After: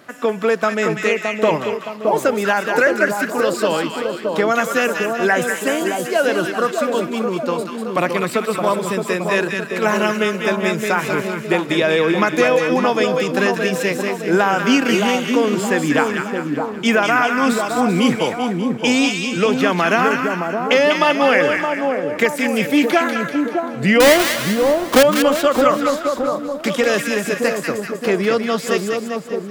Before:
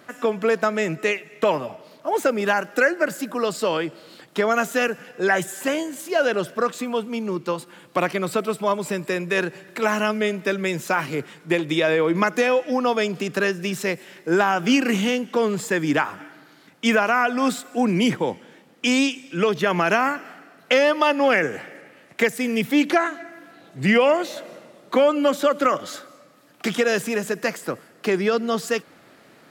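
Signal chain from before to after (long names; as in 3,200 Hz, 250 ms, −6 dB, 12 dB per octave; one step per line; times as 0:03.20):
0:24.00–0:25.03: each half-wave held at its own peak
echo with a time of its own for lows and highs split 1,100 Hz, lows 618 ms, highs 194 ms, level −4 dB
level +3 dB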